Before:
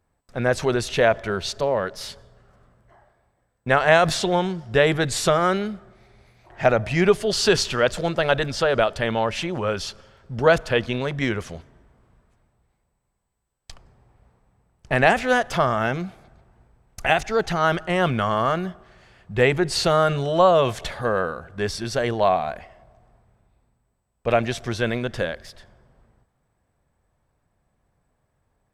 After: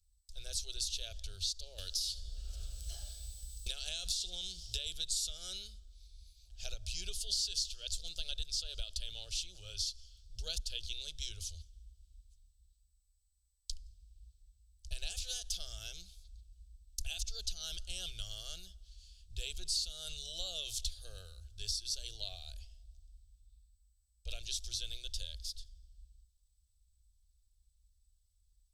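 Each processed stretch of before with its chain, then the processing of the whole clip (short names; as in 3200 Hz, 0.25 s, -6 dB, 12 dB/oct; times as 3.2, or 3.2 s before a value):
1.78–4.86 echo 73 ms -20 dB + three-band squash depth 100%
whole clip: inverse Chebyshev band-stop 120–2100 Hz, stop band 40 dB; high shelf 9000 Hz -4.5 dB; compressor 4:1, threshold -39 dBFS; gain +4.5 dB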